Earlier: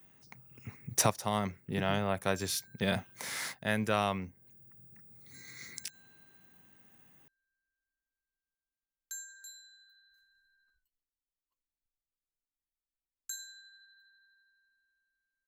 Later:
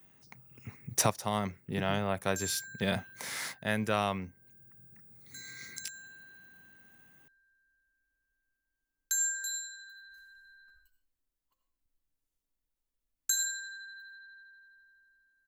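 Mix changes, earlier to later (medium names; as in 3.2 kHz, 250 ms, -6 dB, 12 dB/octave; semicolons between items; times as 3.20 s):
background +9.5 dB; reverb: on, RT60 0.40 s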